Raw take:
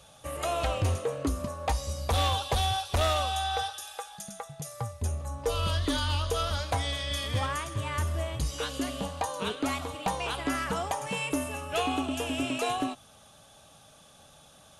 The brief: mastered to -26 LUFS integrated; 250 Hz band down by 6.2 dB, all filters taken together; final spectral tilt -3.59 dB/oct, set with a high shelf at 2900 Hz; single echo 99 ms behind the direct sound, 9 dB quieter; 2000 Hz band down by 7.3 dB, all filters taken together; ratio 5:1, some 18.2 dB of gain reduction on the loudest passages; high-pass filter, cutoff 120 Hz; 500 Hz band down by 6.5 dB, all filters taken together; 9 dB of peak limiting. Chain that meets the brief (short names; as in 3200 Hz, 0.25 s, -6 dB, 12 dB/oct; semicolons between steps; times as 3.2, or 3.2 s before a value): HPF 120 Hz; bell 250 Hz -5 dB; bell 500 Hz -6.5 dB; bell 2000 Hz -8 dB; high shelf 2900 Hz -4 dB; compressor 5:1, threshold -50 dBFS; limiter -43.5 dBFS; echo 99 ms -9 dB; gain +27 dB